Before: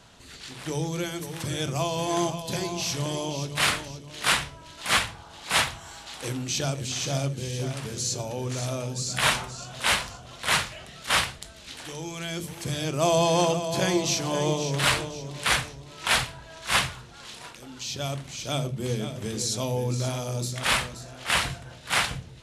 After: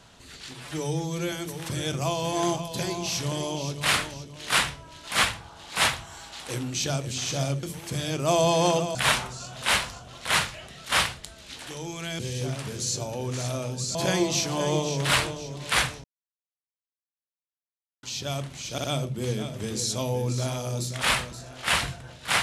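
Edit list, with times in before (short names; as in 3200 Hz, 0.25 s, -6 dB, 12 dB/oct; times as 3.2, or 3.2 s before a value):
0.54–1.06 stretch 1.5×
7.37–9.13 swap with 12.37–13.69
15.78–17.77 mute
18.46 stutter 0.06 s, 3 plays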